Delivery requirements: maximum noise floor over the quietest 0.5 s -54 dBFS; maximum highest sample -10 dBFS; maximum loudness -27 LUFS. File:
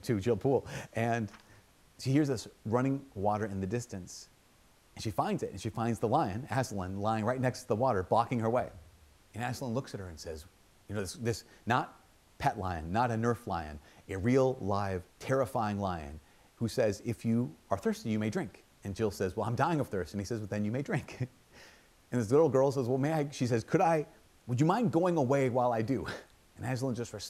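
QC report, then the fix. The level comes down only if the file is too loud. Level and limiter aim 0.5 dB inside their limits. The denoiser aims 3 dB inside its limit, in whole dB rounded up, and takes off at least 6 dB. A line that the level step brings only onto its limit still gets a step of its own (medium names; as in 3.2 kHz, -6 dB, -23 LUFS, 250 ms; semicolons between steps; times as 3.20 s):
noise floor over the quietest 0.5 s -64 dBFS: pass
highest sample -13.5 dBFS: pass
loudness -32.5 LUFS: pass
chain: none needed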